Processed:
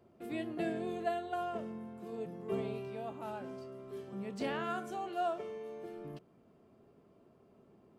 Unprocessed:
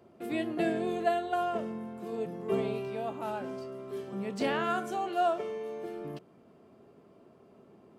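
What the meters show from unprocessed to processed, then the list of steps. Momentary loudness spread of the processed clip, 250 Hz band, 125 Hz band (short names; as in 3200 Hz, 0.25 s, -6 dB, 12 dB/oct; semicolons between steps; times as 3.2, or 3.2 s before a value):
10 LU, -6.0 dB, -4.0 dB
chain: low shelf 91 Hz +10.5 dB; gain -7 dB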